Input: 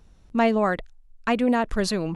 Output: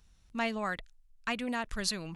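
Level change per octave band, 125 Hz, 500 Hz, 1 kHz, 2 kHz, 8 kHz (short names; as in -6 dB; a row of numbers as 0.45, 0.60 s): -12.0 dB, -15.0 dB, -11.0 dB, -6.0 dB, n/a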